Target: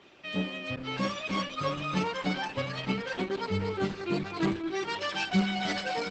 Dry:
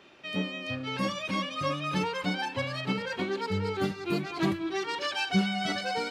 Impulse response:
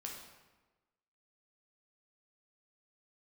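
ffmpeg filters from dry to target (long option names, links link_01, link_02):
-filter_complex "[0:a]asettb=1/sr,asplit=3[link_01][link_02][link_03];[link_01]atrim=end=0.764[link_04];[link_02]atrim=start=0.76:end=2.87,asetpts=PTS-STARTPTS,afade=type=in:duration=0.004:curve=qsin,afade=type=out:start_time=2.106:duration=0.004:curve=qsin,agate=range=-33dB:threshold=-34dB:ratio=3:detection=peak[link_05];[link_03]atrim=start=2.866[link_06];[link_04][link_05]acrossfade=duration=0.004:curve1=hsin:curve2=qsin[link_07];[link_07][link_06]acrossfade=duration=0.004:curve1=qsin:curve2=hsin,aecho=1:1:718|1436|2154|2872:0.133|0.0587|0.0258|0.0114" -ar 48000 -c:a libopus -b:a 12k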